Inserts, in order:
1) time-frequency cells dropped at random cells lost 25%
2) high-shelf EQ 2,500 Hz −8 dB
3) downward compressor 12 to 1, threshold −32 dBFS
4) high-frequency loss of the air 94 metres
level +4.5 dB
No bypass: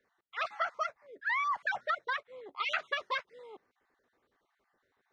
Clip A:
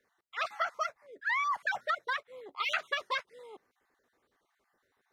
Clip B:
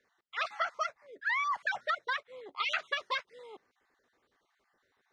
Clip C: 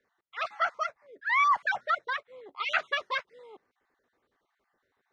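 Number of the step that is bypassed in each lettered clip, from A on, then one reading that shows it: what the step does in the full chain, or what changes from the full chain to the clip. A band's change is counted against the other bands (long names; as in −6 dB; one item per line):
4, 4 kHz band +1.5 dB
2, 4 kHz band +3.0 dB
3, average gain reduction 2.5 dB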